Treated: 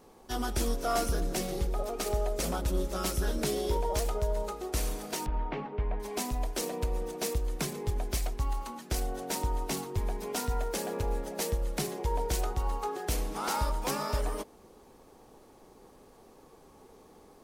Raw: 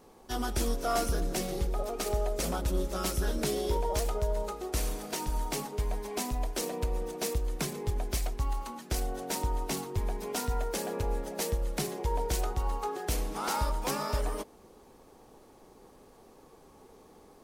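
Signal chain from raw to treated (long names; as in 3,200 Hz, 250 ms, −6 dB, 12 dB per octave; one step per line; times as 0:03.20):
0:05.26–0:06.00: low-pass filter 2,600 Hz 24 dB per octave
0:10.58–0:11.19: surface crackle 280 per second → 98 per second −44 dBFS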